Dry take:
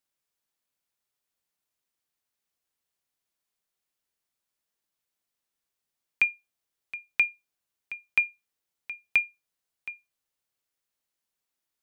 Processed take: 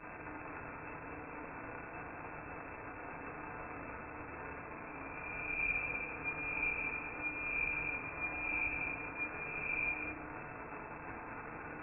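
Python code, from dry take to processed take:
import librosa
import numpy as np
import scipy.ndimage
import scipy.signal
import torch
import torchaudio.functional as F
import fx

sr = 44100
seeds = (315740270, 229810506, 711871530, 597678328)

p1 = fx.spec_swells(x, sr, rise_s=1.86)
p2 = scipy.signal.sosfilt(scipy.signal.cheby2(4, 40, [120.0, 1900.0], 'bandstop', fs=sr, output='sos'), p1)
p3 = fx.over_compress(p2, sr, threshold_db=-54.0, ratio=-1.0)
p4 = fx.dmg_crackle(p3, sr, seeds[0], per_s=440.0, level_db=-40.0)
p5 = fx.brickwall_lowpass(p4, sr, high_hz=2700.0)
p6 = fx.peak_eq(p5, sr, hz=2000.0, db=-7.0, octaves=0.36)
p7 = p6 + fx.echo_single(p6, sr, ms=197, db=-7.5, dry=0)
p8 = fx.rev_fdn(p7, sr, rt60_s=0.95, lf_ratio=1.0, hf_ratio=0.3, size_ms=20.0, drr_db=-2.0)
y = p8 * 10.0 ** (11.5 / 20.0)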